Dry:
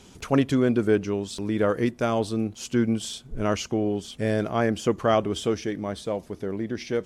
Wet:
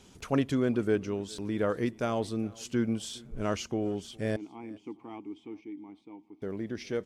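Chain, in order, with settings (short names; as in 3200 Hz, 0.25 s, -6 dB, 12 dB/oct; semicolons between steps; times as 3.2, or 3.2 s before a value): 4.36–6.42 vowel filter u; on a send: feedback echo 0.411 s, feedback 40%, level -24 dB; on the sum: gain -6 dB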